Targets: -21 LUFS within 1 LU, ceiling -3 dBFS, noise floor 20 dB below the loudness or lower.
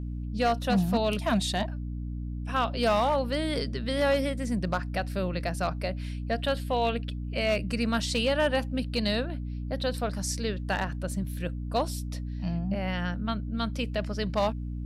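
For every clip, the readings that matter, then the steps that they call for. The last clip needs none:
clipped 0.4%; flat tops at -18.5 dBFS; hum 60 Hz; harmonics up to 300 Hz; hum level -32 dBFS; loudness -29.5 LUFS; peak -18.5 dBFS; loudness target -21.0 LUFS
-> clip repair -18.5 dBFS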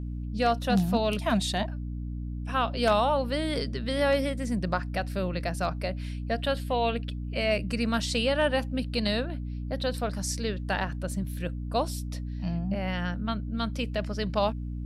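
clipped 0.0%; hum 60 Hz; harmonics up to 300 Hz; hum level -31 dBFS
-> notches 60/120/180/240/300 Hz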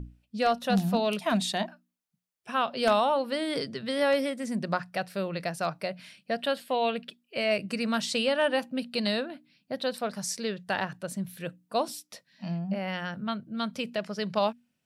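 hum none; loudness -29.5 LUFS; peak -10.5 dBFS; loudness target -21.0 LUFS
-> gain +8.5 dB; limiter -3 dBFS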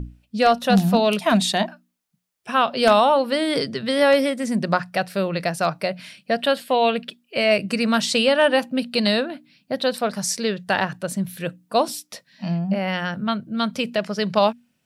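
loudness -21.5 LUFS; peak -3.0 dBFS; noise floor -70 dBFS

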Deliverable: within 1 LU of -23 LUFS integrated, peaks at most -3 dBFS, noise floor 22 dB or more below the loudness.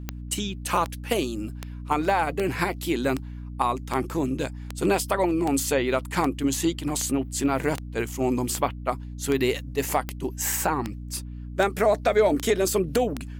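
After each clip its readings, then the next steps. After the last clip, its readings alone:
clicks 18; hum 60 Hz; harmonics up to 300 Hz; hum level -34 dBFS; loudness -26.0 LUFS; peak -7.5 dBFS; loudness target -23.0 LUFS
-> de-click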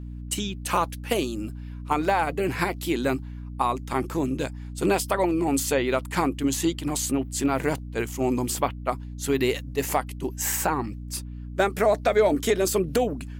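clicks 0; hum 60 Hz; harmonics up to 300 Hz; hum level -34 dBFS
-> notches 60/120/180/240/300 Hz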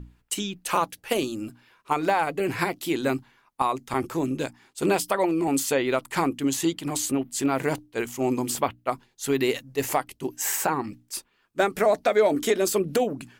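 hum none; loudness -26.0 LUFS; peak -8.5 dBFS; loudness target -23.0 LUFS
-> gain +3 dB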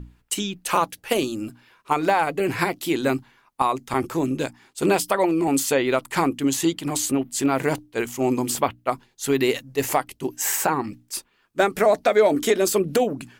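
loudness -23.0 LUFS; peak -5.5 dBFS; noise floor -64 dBFS

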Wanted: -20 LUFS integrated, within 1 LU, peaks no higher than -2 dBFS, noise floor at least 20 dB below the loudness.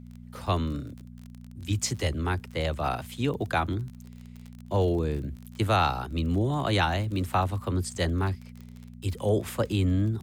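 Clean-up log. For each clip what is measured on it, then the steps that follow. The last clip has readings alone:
ticks 33/s; hum 60 Hz; harmonics up to 240 Hz; hum level -42 dBFS; loudness -28.5 LUFS; peak -12.0 dBFS; loudness target -20.0 LUFS
-> de-click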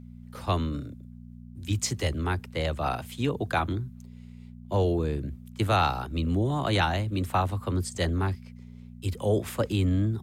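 ticks 0/s; hum 60 Hz; harmonics up to 240 Hz; hum level -42 dBFS
-> de-hum 60 Hz, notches 4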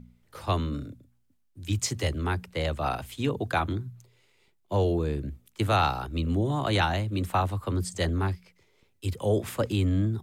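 hum none; loudness -28.5 LUFS; peak -11.5 dBFS; loudness target -20.0 LUFS
-> gain +8.5 dB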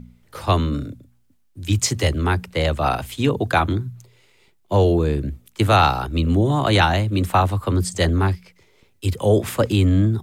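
loudness -20.0 LUFS; peak -3.0 dBFS; noise floor -59 dBFS

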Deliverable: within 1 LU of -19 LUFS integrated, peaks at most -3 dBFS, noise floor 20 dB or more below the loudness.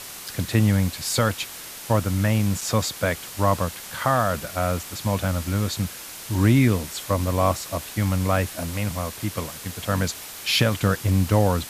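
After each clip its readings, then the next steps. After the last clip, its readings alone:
dropouts 2; longest dropout 3.8 ms; noise floor -38 dBFS; noise floor target -44 dBFS; loudness -23.5 LUFS; peak -6.0 dBFS; loudness target -19.0 LUFS
-> interpolate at 0.28/2.61, 3.8 ms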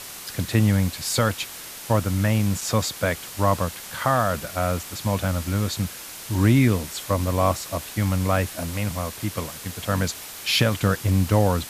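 dropouts 0; noise floor -38 dBFS; noise floor target -44 dBFS
-> denoiser 6 dB, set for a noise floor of -38 dBFS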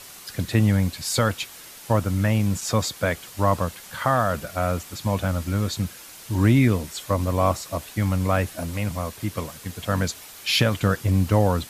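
noise floor -43 dBFS; noise floor target -44 dBFS
-> denoiser 6 dB, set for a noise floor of -43 dBFS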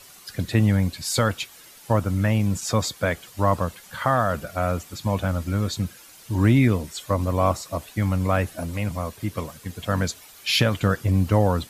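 noise floor -48 dBFS; loudness -24.0 LUFS; peak -6.5 dBFS; loudness target -19.0 LUFS
-> gain +5 dB; limiter -3 dBFS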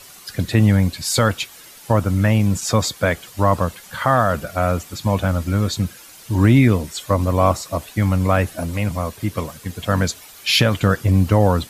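loudness -19.0 LUFS; peak -3.0 dBFS; noise floor -43 dBFS

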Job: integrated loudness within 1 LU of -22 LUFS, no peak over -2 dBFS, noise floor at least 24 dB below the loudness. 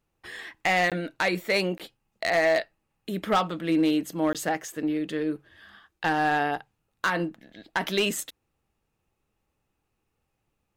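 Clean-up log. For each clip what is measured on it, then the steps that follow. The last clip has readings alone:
clipped 0.5%; flat tops at -16.5 dBFS; dropouts 3; longest dropout 17 ms; loudness -26.5 LUFS; peak -16.5 dBFS; loudness target -22.0 LUFS
-> clip repair -16.5 dBFS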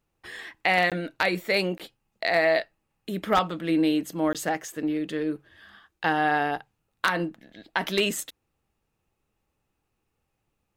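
clipped 0.0%; dropouts 3; longest dropout 17 ms
-> interpolate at 0.9/1.78/4.33, 17 ms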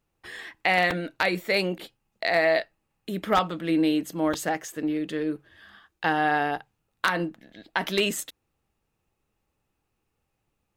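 dropouts 0; loudness -26.0 LUFS; peak -7.5 dBFS; loudness target -22.0 LUFS
-> gain +4 dB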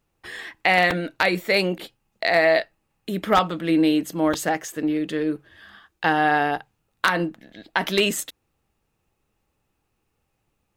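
loudness -22.0 LUFS; peak -3.5 dBFS; noise floor -74 dBFS

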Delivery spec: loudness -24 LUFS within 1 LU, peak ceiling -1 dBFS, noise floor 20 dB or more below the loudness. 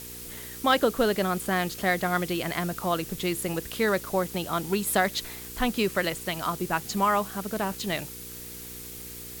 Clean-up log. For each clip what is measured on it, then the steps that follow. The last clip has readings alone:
hum 60 Hz; harmonics up to 480 Hz; hum level -44 dBFS; noise floor -41 dBFS; noise floor target -48 dBFS; loudness -27.5 LUFS; peak -9.5 dBFS; loudness target -24.0 LUFS
-> de-hum 60 Hz, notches 8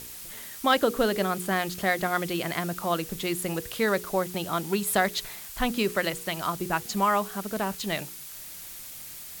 hum none; noise floor -42 dBFS; noise floor target -48 dBFS
-> denoiser 6 dB, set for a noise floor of -42 dBFS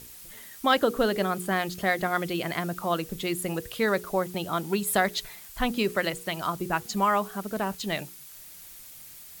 noise floor -47 dBFS; noise floor target -48 dBFS
-> denoiser 6 dB, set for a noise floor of -47 dBFS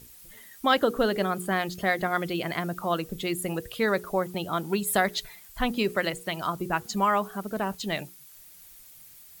noise floor -51 dBFS; loudness -28.0 LUFS; peak -10.0 dBFS; loudness target -24.0 LUFS
-> gain +4 dB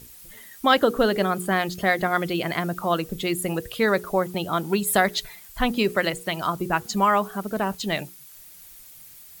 loudness -24.0 LUFS; peak -6.0 dBFS; noise floor -47 dBFS

